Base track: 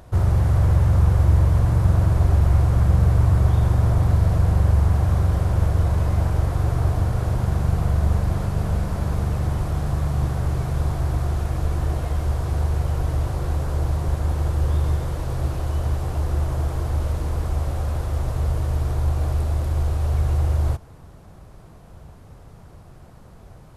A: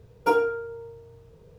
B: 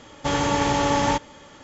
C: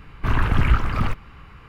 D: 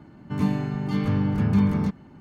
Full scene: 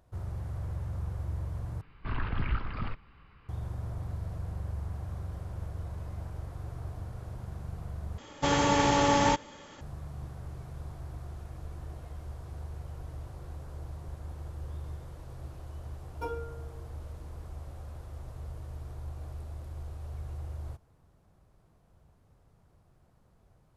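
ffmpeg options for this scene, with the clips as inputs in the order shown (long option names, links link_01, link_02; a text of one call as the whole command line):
ffmpeg -i bed.wav -i cue0.wav -i cue1.wav -i cue2.wav -filter_complex "[0:a]volume=-19dB[link_01];[3:a]aresample=11025,aresample=44100[link_02];[link_01]asplit=3[link_03][link_04][link_05];[link_03]atrim=end=1.814[link_06];[link_02]atrim=end=1.68,asetpts=PTS-STARTPTS,volume=-13dB[link_07];[link_04]atrim=start=3.486:end=8.184[link_08];[2:a]atrim=end=1.63,asetpts=PTS-STARTPTS,volume=-3dB[link_09];[link_05]atrim=start=9.806[link_10];[1:a]atrim=end=1.58,asetpts=PTS-STARTPTS,volume=-16dB,afade=type=in:duration=0.004:curve=hsin,afade=type=out:start_time=1.576:duration=0.004:curve=hsin,adelay=15950[link_11];[link_06][link_07]acrossfade=duration=0.004:curve1=hsin:curve2=hsin[link_12];[link_12][link_08]acrossfade=duration=0.004:curve1=hsin:curve2=hsin[link_13];[link_13][link_09]acrossfade=duration=0.004:curve1=hsin:curve2=hsin[link_14];[link_14][link_10]acrossfade=duration=0.004:curve1=hsin:curve2=hsin[link_15];[link_15][link_11]amix=inputs=2:normalize=0" out.wav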